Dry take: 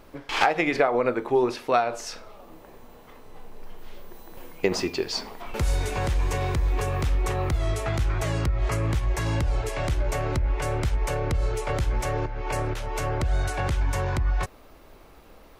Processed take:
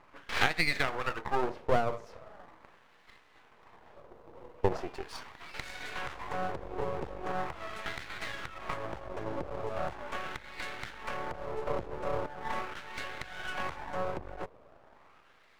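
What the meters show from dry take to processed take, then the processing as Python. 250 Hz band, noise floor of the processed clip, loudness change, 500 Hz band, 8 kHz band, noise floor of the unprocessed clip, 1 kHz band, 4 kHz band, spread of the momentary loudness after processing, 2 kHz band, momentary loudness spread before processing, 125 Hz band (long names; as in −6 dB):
−11.0 dB, −61 dBFS, −9.5 dB, −8.5 dB, −14.0 dB, −50 dBFS, −6.5 dB, −6.0 dB, 14 LU, −4.0 dB, 7 LU, −18.0 dB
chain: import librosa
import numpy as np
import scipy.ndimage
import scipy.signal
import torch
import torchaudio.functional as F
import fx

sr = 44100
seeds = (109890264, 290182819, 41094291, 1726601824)

y = fx.filter_lfo_bandpass(x, sr, shape='sine', hz=0.4, low_hz=470.0, high_hz=2000.0, q=2.2)
y = np.maximum(y, 0.0)
y = F.gain(torch.from_numpy(y), 4.5).numpy()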